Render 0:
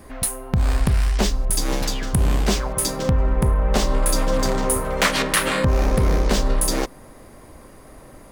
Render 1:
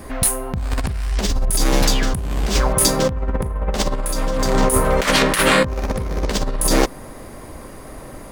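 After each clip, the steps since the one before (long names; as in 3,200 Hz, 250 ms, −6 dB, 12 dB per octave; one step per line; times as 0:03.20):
compressor whose output falls as the input rises −21 dBFS, ratio −0.5
level +4.5 dB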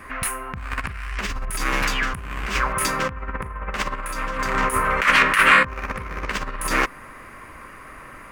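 flat-topped bell 1,700 Hz +15 dB
level −10 dB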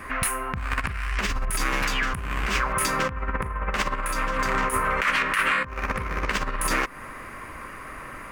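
downward compressor 6 to 1, threshold −23 dBFS, peak gain reduction 13 dB
level +2.5 dB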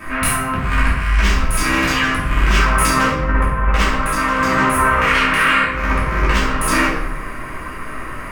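rectangular room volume 270 cubic metres, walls mixed, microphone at 2.8 metres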